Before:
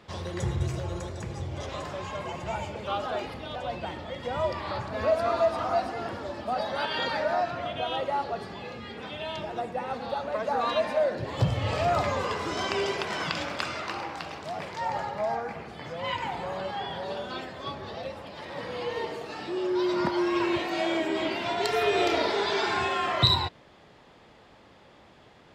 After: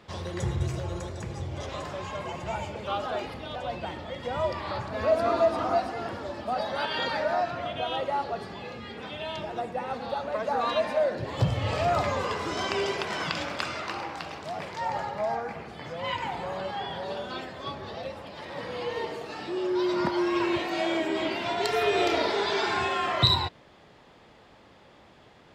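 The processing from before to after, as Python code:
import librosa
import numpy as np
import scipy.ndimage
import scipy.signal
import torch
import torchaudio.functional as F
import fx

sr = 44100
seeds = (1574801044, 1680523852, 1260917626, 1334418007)

y = fx.peak_eq(x, sr, hz=310.0, db=6.5, octaves=1.1, at=(5.1, 5.78))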